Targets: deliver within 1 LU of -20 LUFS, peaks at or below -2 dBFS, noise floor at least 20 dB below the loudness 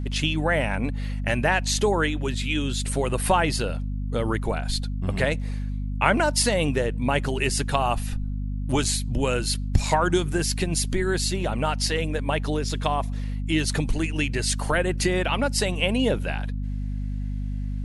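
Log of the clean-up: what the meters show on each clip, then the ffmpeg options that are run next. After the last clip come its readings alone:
hum 50 Hz; highest harmonic 250 Hz; hum level -26 dBFS; loudness -25.0 LUFS; peak level -3.5 dBFS; loudness target -20.0 LUFS
-> -af "bandreject=f=50:t=h:w=4,bandreject=f=100:t=h:w=4,bandreject=f=150:t=h:w=4,bandreject=f=200:t=h:w=4,bandreject=f=250:t=h:w=4"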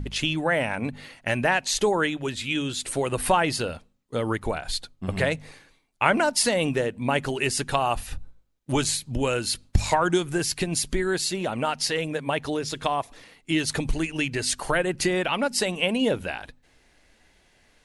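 hum not found; loudness -25.5 LUFS; peak level -4.5 dBFS; loudness target -20.0 LUFS
-> -af "volume=1.88,alimiter=limit=0.794:level=0:latency=1"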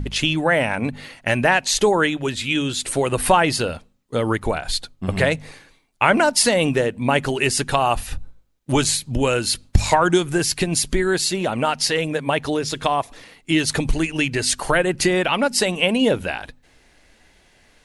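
loudness -20.0 LUFS; peak level -2.0 dBFS; noise floor -57 dBFS

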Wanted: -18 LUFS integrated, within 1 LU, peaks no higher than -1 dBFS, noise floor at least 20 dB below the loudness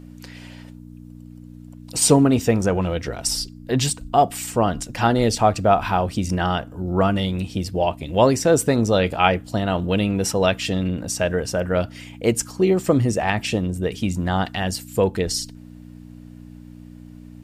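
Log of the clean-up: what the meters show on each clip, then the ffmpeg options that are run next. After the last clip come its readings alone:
hum 60 Hz; highest harmonic 300 Hz; hum level -39 dBFS; loudness -21.0 LUFS; peak level -1.5 dBFS; loudness target -18.0 LUFS
-> -af "bandreject=f=60:t=h:w=4,bandreject=f=120:t=h:w=4,bandreject=f=180:t=h:w=4,bandreject=f=240:t=h:w=4,bandreject=f=300:t=h:w=4"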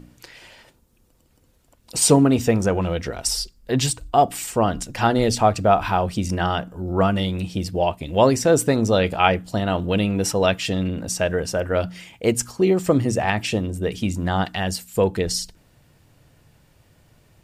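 hum not found; loudness -21.0 LUFS; peak level -1.5 dBFS; loudness target -18.0 LUFS
-> -af "volume=1.41,alimiter=limit=0.891:level=0:latency=1"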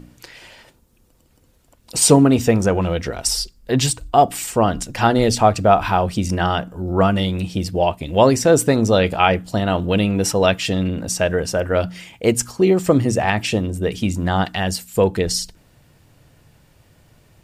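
loudness -18.0 LUFS; peak level -1.0 dBFS; noise floor -56 dBFS

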